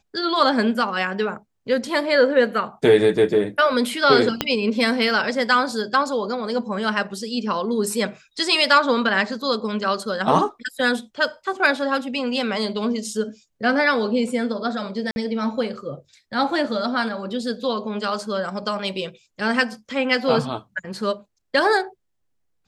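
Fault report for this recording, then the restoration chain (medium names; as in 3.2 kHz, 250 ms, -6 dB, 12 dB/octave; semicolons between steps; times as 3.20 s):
4.41 s: pop -4 dBFS
15.11–15.16 s: dropout 51 ms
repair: de-click; interpolate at 15.11 s, 51 ms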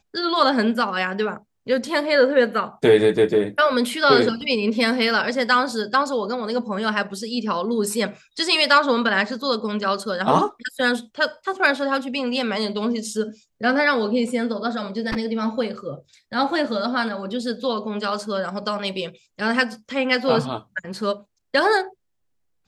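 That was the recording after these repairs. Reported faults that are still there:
4.41 s: pop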